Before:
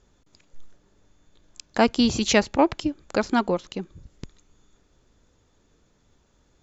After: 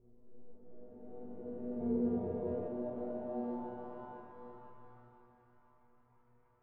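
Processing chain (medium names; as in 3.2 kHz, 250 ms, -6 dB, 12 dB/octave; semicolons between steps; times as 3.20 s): spectral blur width 1490 ms; in parallel at -2 dB: compression, threshold -46 dBFS, peak gain reduction 17 dB; on the sum: inharmonic resonator 120 Hz, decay 0.71 s, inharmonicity 0.002; 1.80–2.68 s: resonant low-pass 4 kHz, resonance Q 5; sample-and-hold 10×; on a send: thinning echo 503 ms, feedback 53%, high-pass 350 Hz, level -14 dB; on the sum: low-pass sweep 450 Hz -> 1.1 kHz, 2.31–4.72 s; trim +3.5 dB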